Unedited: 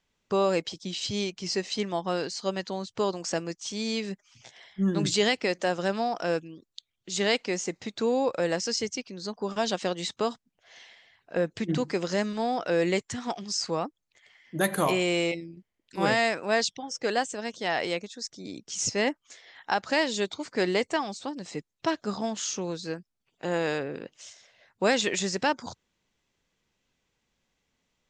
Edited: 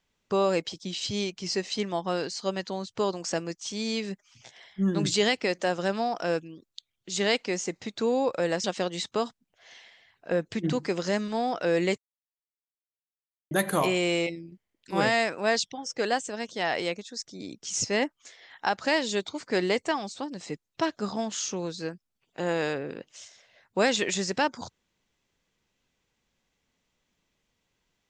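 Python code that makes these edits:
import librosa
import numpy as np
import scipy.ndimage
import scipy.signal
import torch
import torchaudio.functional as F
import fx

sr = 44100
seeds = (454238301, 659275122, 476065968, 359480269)

y = fx.edit(x, sr, fx.cut(start_s=8.64, length_s=1.05),
    fx.silence(start_s=13.03, length_s=1.53), tone=tone)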